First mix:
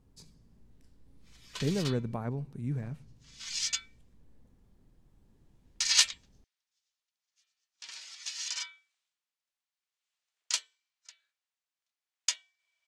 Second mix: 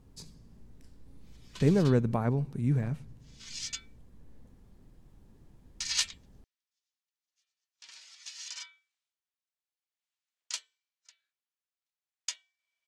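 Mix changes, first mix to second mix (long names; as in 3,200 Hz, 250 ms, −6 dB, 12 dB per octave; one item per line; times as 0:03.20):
speech +6.5 dB
background −6.0 dB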